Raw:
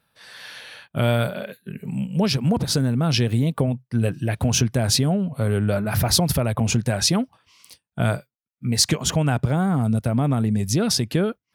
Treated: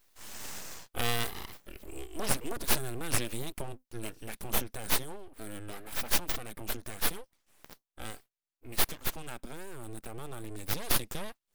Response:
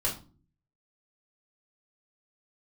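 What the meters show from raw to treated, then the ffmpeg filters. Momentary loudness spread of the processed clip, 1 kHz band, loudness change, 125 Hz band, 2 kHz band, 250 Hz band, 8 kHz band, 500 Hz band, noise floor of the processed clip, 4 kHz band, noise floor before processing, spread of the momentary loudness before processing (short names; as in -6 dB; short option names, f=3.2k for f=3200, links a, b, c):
15 LU, -10.0 dB, -13.0 dB, -22.5 dB, -7.0 dB, -21.0 dB, -10.0 dB, -15.5 dB, under -85 dBFS, -12.0 dB, -83 dBFS, 13 LU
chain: -af "crystalizer=i=6:c=0,dynaudnorm=f=580:g=5:m=11.5dB,aeval=exprs='abs(val(0))':c=same,volume=-8.5dB"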